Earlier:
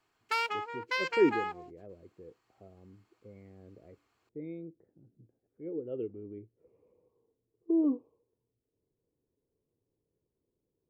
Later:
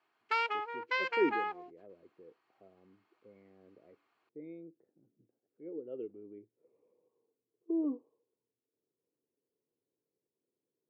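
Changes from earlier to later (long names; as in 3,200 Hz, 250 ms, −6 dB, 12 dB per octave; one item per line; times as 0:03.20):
speech −4.5 dB
master: add band-pass filter 230–3,400 Hz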